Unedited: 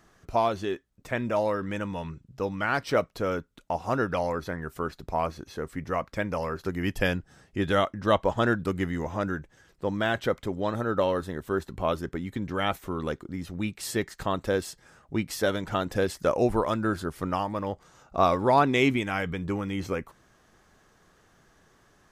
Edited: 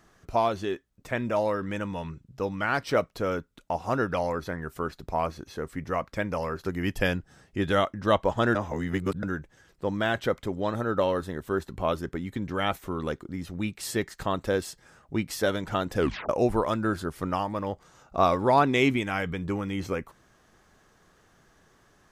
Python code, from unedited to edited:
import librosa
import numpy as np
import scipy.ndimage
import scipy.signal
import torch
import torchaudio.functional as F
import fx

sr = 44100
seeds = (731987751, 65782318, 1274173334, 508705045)

y = fx.edit(x, sr, fx.reverse_span(start_s=8.55, length_s=0.68),
    fx.tape_stop(start_s=15.98, length_s=0.31), tone=tone)